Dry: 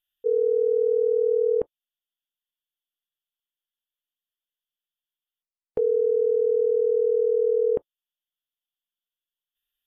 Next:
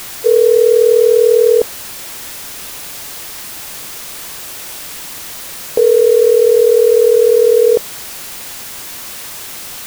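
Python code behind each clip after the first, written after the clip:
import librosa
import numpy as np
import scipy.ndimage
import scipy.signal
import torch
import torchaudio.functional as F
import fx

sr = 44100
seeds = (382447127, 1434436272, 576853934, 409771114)

y = fx.peak_eq(x, sr, hz=620.0, db=9.0, octaves=2.3)
y = fx.dmg_noise_colour(y, sr, seeds[0], colour='white', level_db=-33.0)
y = F.gain(torch.from_numpy(y), 4.5).numpy()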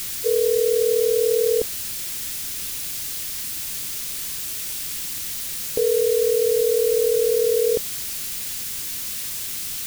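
y = fx.peak_eq(x, sr, hz=780.0, db=-14.5, octaves=2.4)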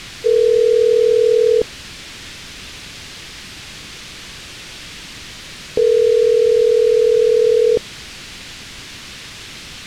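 y = scipy.signal.sosfilt(scipy.signal.butter(2, 3400.0, 'lowpass', fs=sr, output='sos'), x)
y = F.gain(torch.from_numpy(y), 6.5).numpy()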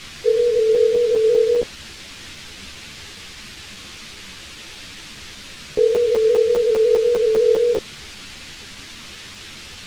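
y = fx.buffer_crackle(x, sr, first_s=0.75, period_s=0.2, block=256, kind='zero')
y = fx.ensemble(y, sr)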